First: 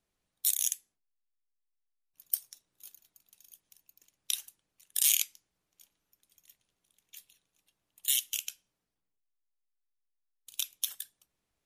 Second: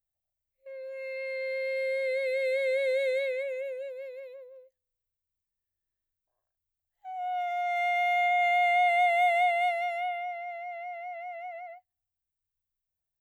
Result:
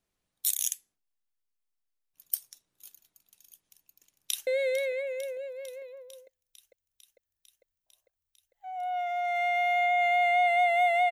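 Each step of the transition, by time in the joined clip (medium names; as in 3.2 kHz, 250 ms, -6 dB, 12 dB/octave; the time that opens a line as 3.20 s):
first
3.69–4.47 s: echo throw 450 ms, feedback 75%, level -14.5 dB
4.47 s: go over to second from 2.88 s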